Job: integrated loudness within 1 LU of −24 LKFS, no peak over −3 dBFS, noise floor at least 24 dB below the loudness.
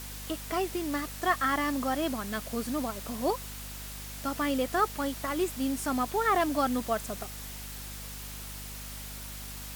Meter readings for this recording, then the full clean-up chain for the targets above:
mains hum 50 Hz; hum harmonics up to 250 Hz; level of the hum −41 dBFS; background noise floor −41 dBFS; target noise floor −56 dBFS; integrated loudness −31.5 LKFS; sample peak −13.0 dBFS; target loudness −24.0 LKFS
→ hum removal 50 Hz, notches 5
broadband denoise 15 dB, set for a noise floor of −41 dBFS
level +7.5 dB

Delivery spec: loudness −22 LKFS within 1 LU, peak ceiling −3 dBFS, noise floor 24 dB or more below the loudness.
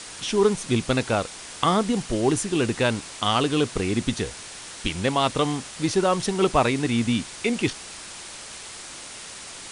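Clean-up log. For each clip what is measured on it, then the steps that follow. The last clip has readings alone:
background noise floor −40 dBFS; target noise floor −48 dBFS; integrated loudness −24.0 LKFS; sample peak −6.0 dBFS; target loudness −22.0 LKFS
→ broadband denoise 8 dB, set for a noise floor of −40 dBFS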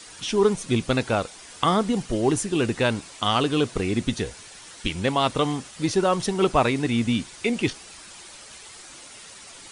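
background noise floor −45 dBFS; target noise floor −48 dBFS
→ broadband denoise 6 dB, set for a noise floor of −45 dBFS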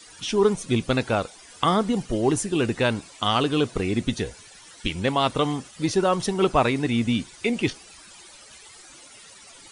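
background noise floor −48 dBFS; integrated loudness −24.0 LKFS; sample peak −6.0 dBFS; target loudness −22.0 LKFS
→ level +2 dB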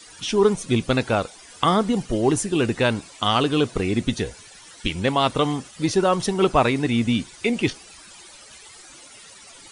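integrated loudness −22.0 LKFS; sample peak −4.0 dBFS; background noise floor −46 dBFS

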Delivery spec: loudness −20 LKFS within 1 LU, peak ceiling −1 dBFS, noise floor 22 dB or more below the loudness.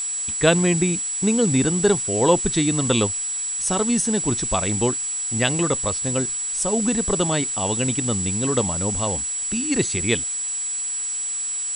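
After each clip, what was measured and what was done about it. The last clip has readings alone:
interfering tone 7,800 Hz; level of the tone −24 dBFS; background noise floor −27 dBFS; target noise floor −43 dBFS; integrated loudness −20.5 LKFS; sample peak −3.0 dBFS; target loudness −20.0 LKFS
→ notch filter 7,800 Hz, Q 30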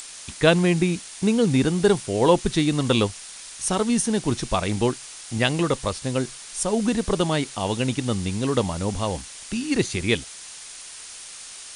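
interfering tone none found; background noise floor −40 dBFS; target noise floor −45 dBFS
→ broadband denoise 6 dB, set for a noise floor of −40 dBFS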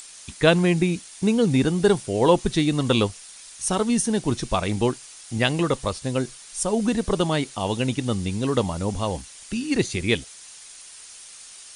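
background noise floor −44 dBFS; target noise floor −46 dBFS
→ broadband denoise 6 dB, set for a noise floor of −44 dBFS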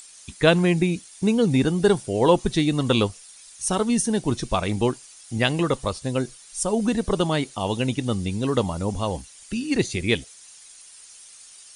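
background noise floor −47 dBFS; integrated loudness −23.5 LKFS; sample peak −3.5 dBFS; target loudness −20.0 LKFS
→ level +3.5 dB
brickwall limiter −1 dBFS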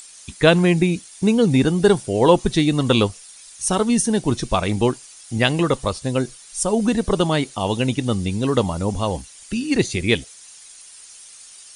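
integrated loudness −20.0 LKFS; sample peak −1.0 dBFS; background noise floor −44 dBFS

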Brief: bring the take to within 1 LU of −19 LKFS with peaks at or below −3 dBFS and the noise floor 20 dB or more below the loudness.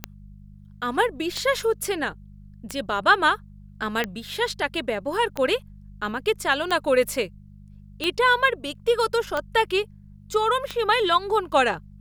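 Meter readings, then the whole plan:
number of clicks 9; mains hum 50 Hz; hum harmonics up to 200 Hz; level of the hum −44 dBFS; integrated loudness −23.5 LKFS; sample peak −5.5 dBFS; target loudness −19.0 LKFS
→ click removal
hum removal 50 Hz, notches 4
level +4.5 dB
brickwall limiter −3 dBFS

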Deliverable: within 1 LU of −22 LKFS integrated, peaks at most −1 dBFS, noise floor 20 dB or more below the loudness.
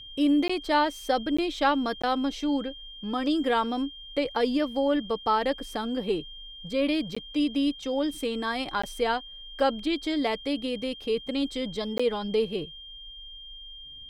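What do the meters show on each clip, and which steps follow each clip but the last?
number of dropouts 6; longest dropout 15 ms; interfering tone 3,200 Hz; level of the tone −42 dBFS; integrated loudness −28.0 LKFS; sample peak −11.0 dBFS; target loudness −22.0 LKFS
→ repair the gap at 0:00.48/0:01.37/0:02.02/0:07.15/0:08.82/0:11.98, 15 ms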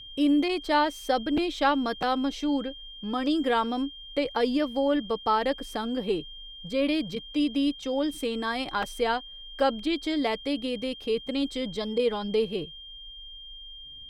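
number of dropouts 0; interfering tone 3,200 Hz; level of the tone −42 dBFS
→ notch filter 3,200 Hz, Q 30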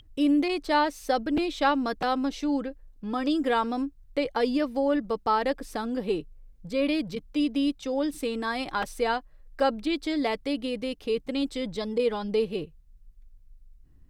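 interfering tone none found; integrated loudness −28.0 LKFS; sample peak −11.0 dBFS; target loudness −22.0 LKFS
→ level +6 dB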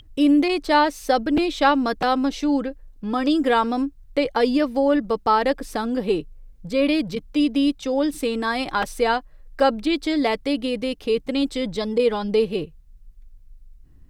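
integrated loudness −22.0 LKFS; sample peak −5.0 dBFS; background noise floor −49 dBFS

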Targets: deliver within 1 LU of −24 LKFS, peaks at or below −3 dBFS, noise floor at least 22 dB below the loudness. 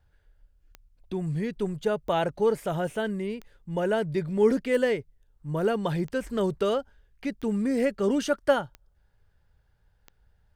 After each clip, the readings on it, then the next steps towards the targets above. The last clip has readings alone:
number of clicks 8; integrated loudness −27.5 LKFS; sample peak −9.5 dBFS; target loudness −24.0 LKFS
→ click removal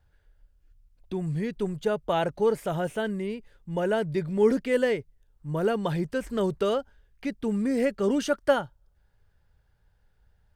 number of clicks 0; integrated loudness −27.5 LKFS; sample peak −9.5 dBFS; target loudness −24.0 LKFS
→ level +3.5 dB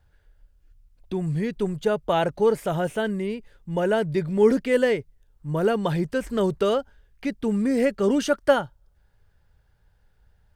integrated loudness −24.0 LKFS; sample peak −6.0 dBFS; background noise floor −63 dBFS

